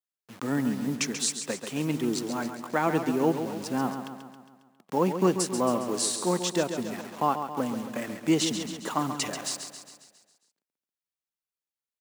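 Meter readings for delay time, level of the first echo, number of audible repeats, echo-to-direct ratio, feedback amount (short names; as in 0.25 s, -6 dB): 0.136 s, -8.5 dB, 6, -7.0 dB, 56%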